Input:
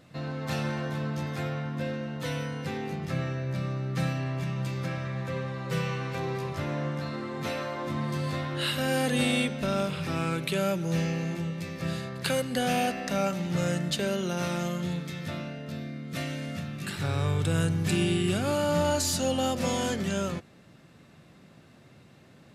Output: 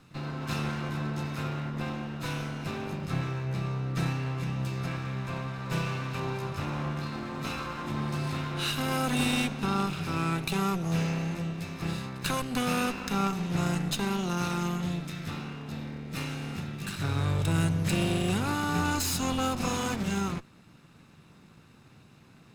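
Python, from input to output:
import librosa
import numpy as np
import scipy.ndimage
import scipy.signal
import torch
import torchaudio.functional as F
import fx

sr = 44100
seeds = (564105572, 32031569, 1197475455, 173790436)

y = fx.lower_of_two(x, sr, delay_ms=0.76)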